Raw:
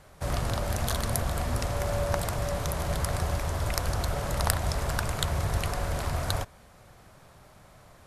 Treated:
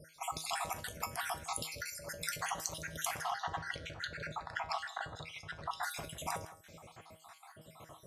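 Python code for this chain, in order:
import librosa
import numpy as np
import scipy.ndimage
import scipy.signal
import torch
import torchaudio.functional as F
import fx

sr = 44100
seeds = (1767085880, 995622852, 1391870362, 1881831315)

y = fx.spec_dropout(x, sr, seeds[0], share_pct=67)
y = fx.lowpass(y, sr, hz=3300.0, slope=12, at=(3.22, 5.83))
y = fx.over_compress(y, sr, threshold_db=-39.0, ratio=-1.0)
y = scipy.signal.sosfilt(scipy.signal.butter(2, 61.0, 'highpass', fs=sr, output='sos'), y)
y = fx.low_shelf(y, sr, hz=120.0, db=-6.0)
y = fx.comb_fb(y, sr, f0_hz=160.0, decay_s=0.33, harmonics='all', damping=0.0, mix_pct=70)
y = y + 10.0 ** (-16.5 / 20.0) * np.pad(y, (int(160 * sr / 1000.0), 0))[:len(y)]
y = F.gain(torch.from_numpy(y), 6.5).numpy()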